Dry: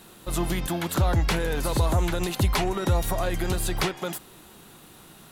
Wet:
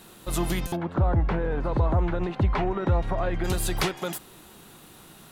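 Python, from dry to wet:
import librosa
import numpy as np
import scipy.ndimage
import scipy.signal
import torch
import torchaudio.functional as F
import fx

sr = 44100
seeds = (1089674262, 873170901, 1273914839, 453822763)

y = fx.lowpass(x, sr, hz=fx.line((0.75, 1100.0), (3.43, 2200.0)), slope=12, at=(0.75, 3.43), fade=0.02)
y = fx.buffer_glitch(y, sr, at_s=(0.67,), block=256, repeats=8)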